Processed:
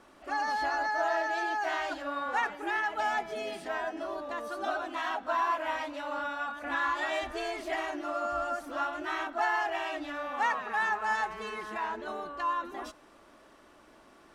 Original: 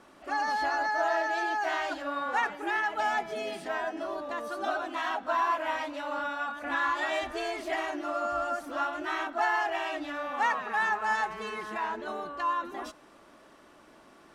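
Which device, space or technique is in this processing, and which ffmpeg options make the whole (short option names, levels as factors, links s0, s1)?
low shelf boost with a cut just above: -af "lowshelf=f=84:g=6,equalizer=f=160:t=o:w=0.98:g=-3.5,volume=0.841"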